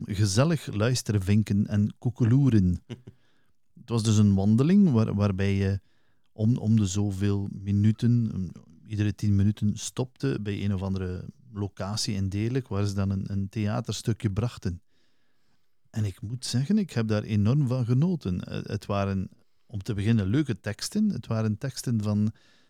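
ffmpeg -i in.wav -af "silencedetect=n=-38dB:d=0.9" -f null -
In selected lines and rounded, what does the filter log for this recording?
silence_start: 14.77
silence_end: 15.94 | silence_duration: 1.17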